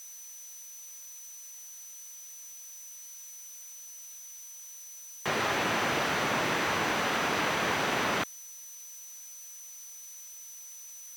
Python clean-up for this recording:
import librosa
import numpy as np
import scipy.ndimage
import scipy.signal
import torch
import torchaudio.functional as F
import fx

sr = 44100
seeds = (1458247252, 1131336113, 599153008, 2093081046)

y = fx.notch(x, sr, hz=6000.0, q=30.0)
y = fx.noise_reduce(y, sr, print_start_s=1.89, print_end_s=2.39, reduce_db=30.0)